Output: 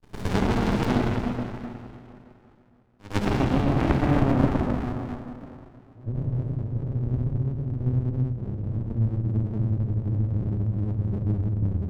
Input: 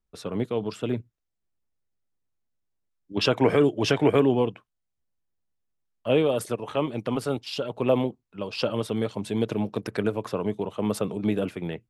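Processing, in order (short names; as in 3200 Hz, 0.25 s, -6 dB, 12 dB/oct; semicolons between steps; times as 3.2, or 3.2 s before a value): half-waves squared off; treble ducked by the level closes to 320 Hz, closed at -14 dBFS; dynamic EQ 140 Hz, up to -5 dB, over -32 dBFS, Q 0.77; compressor, threshold -25 dBFS, peak gain reduction 8.5 dB; pre-echo 0.105 s -19 dB; low-pass sweep 4900 Hz -> 110 Hz, 3.35–6.14; reverb RT60 2.8 s, pre-delay 27 ms, DRR -5.5 dB; running maximum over 65 samples; gain +3.5 dB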